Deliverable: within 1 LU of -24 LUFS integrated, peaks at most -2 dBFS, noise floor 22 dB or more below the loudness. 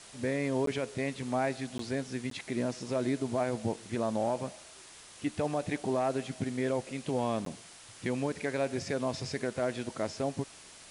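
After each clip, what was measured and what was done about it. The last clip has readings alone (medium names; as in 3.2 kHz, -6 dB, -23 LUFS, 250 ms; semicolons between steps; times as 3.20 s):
dropouts 4; longest dropout 13 ms; noise floor -52 dBFS; noise floor target -56 dBFS; loudness -33.5 LUFS; peak level -20.0 dBFS; loudness target -24.0 LUFS
-> interpolate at 0.66/1.78/2.30/7.45 s, 13 ms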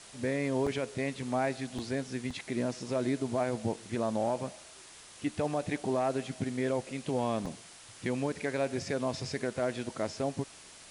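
dropouts 0; noise floor -52 dBFS; noise floor target -56 dBFS
-> noise reduction 6 dB, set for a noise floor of -52 dBFS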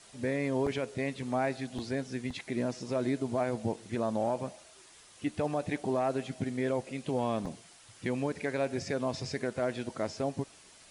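noise floor -56 dBFS; loudness -33.5 LUFS; peak level -20.0 dBFS; loudness target -24.0 LUFS
-> trim +9.5 dB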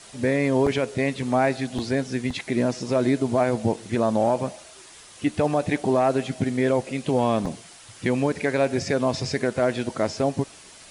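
loudness -24.0 LUFS; peak level -10.5 dBFS; noise floor -47 dBFS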